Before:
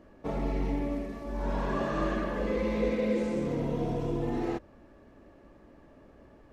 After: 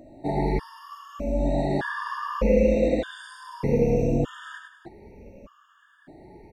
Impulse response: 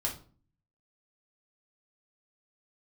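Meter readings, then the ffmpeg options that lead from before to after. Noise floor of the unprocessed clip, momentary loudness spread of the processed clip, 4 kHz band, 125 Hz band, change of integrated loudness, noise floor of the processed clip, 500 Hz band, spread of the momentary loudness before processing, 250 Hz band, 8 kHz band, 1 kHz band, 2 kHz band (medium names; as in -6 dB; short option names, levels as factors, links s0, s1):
-56 dBFS, 21 LU, +4.5 dB, +6.5 dB, +6.5 dB, -59 dBFS, +7.0 dB, 7 LU, +4.0 dB, no reading, +4.5 dB, +5.5 dB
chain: -af "afftfilt=real='re*pow(10,14/40*sin(2*PI*(0.84*log(max(b,1)*sr/1024/100)/log(2)-(0.69)*(pts-256)/sr)))':imag='im*pow(10,14/40*sin(2*PI*(0.84*log(max(b,1)*sr/1024/100)/log(2)-(0.69)*(pts-256)/sr)))':win_size=1024:overlap=0.75,aecho=1:1:43|104|200|307:0.1|0.501|0.158|0.158,afftfilt=real='re*gt(sin(2*PI*0.82*pts/sr)*(1-2*mod(floor(b*sr/1024/920),2)),0)':imag='im*gt(sin(2*PI*0.82*pts/sr)*(1-2*mod(floor(b*sr/1024/920),2)),0)':win_size=1024:overlap=0.75,volume=1.88"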